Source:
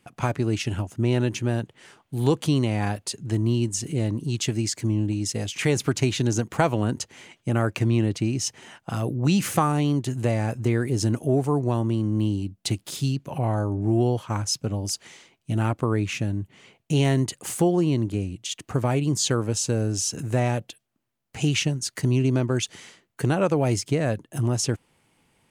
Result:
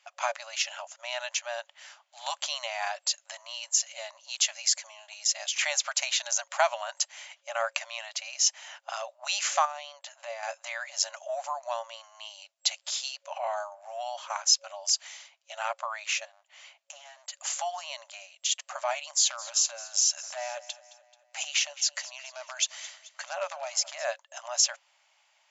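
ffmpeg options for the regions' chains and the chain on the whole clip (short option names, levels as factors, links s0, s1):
-filter_complex "[0:a]asettb=1/sr,asplit=3[s0][s1][s2];[s0]atrim=end=9.654[s3];[s1]atrim=start=9.65:end=10.43,asetpts=PTS-STARTPTS,afade=t=in:d=0.004:c=qsin,afade=t=out:st=0.776:d=0.004:c=qsin,acrossover=split=170|3000[s4][s5][s6];[s5]acompressor=threshold=0.0316:ratio=3:attack=3.2:release=140:knee=2.83:detection=peak[s7];[s4][s7][s6]amix=inputs=3:normalize=0,aemphasis=mode=reproduction:type=75kf[s8];[s2]atrim=start=10.426[s9];[s3][s8]acrossfade=d=0.004:c1=hsin:c2=qsin[s10];[s10][s9]acrossfade=d=0.004:c1=qsin:c2=hsin,asettb=1/sr,asplit=3[s11][s12][s13];[s11]atrim=end=16.254[s14];[s12]atrim=start=16.25:end=17.35,asetpts=PTS-STARTPTS,afade=t=in:d=0.004:c=qsin,afade=t=out:st=1.096:d=0.004:c=qsin,acompressor=threshold=0.0178:ratio=3:attack=3.2:release=140:knee=1:detection=peak,aeval=exprs='clip(val(0),-1,0.01)':c=same[s15];[s13]atrim=start=17.346[s16];[s14][s15]acrossfade=d=0.004:c1=hsin:c2=qsin[s17];[s17][s16]acrossfade=d=0.004:c1=qsin:c2=hsin,asettb=1/sr,asplit=3[s18][s19][s20];[s18]atrim=end=19.104[s21];[s19]atrim=start=19.1:end=24.05,asetpts=PTS-STARTPTS,afade=t=in:d=0.004:c=qsin,afade=t=out:st=4.946:d=0.004:c=qsin,acompressor=threshold=0.0708:ratio=4:attack=3.2:release=140:knee=1:detection=peak,aeval=exprs='0.119*(abs(mod(val(0)/0.119+3,4)-2)-1)':c=same,aecho=1:1:217|434|651|868:0.126|0.0667|0.0354|0.0187,atrim=end_sample=218295[s22];[s20]atrim=start=24.046[s23];[s21][s22]acrossfade=d=0.004:c1=hsin:c2=qsin[s24];[s24][s23]acrossfade=d=0.004:c1=qsin:c2=hsin,afftfilt=real='re*between(b*sr/4096,550,7600)':imag='im*between(b*sr/4096,550,7600)':win_size=4096:overlap=0.75,highshelf=f=3500:g=9,volume=0.841"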